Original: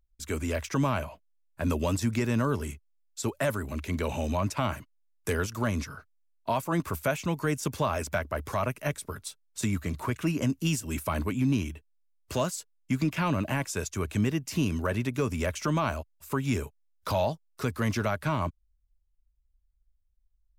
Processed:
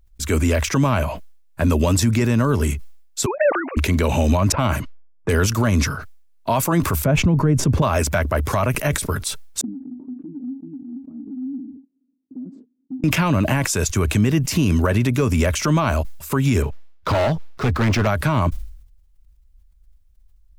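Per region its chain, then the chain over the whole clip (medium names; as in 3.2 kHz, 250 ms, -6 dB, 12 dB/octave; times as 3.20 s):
3.26–3.77 s: formants replaced by sine waves + high-pass 440 Hz + distance through air 260 m
4.52–5.34 s: level-controlled noise filter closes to 640 Hz, open at -27.5 dBFS + band-stop 1.8 kHz, Q 22
7.04–7.82 s: low-pass 1.1 kHz 6 dB/octave + bass shelf 440 Hz +11.5 dB
9.61–13.04 s: Butterworth band-pass 260 Hz, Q 6.1 + compression 3:1, threshold -46 dBFS
16.62–18.07 s: median filter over 5 samples + treble shelf 5.1 kHz -9.5 dB + overload inside the chain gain 29 dB
whole clip: bass shelf 210 Hz +4 dB; loudness maximiser +21 dB; decay stretcher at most 79 dB/s; trim -8.5 dB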